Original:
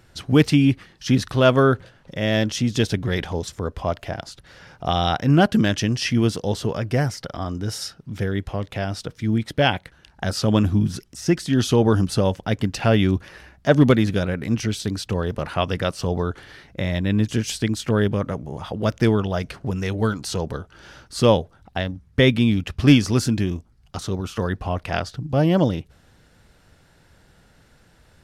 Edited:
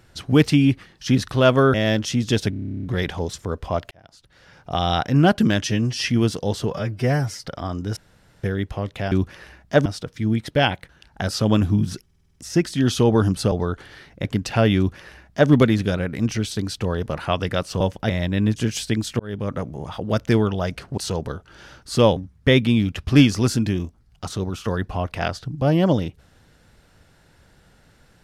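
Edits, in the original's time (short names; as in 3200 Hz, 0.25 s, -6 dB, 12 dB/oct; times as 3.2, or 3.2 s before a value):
1.74–2.21 cut
2.97 stutter 0.03 s, 12 plays
4.05–5.05 fade in
5.78–6.04 stretch 1.5×
6.72–7.21 stretch 1.5×
7.73–8.2 room tone
11.07 stutter 0.05 s, 7 plays
12.24–12.53 swap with 16.09–16.82
13.05–13.79 copy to 8.88
17.92–18.3 fade in
19.7–20.22 cut
21.41–21.88 cut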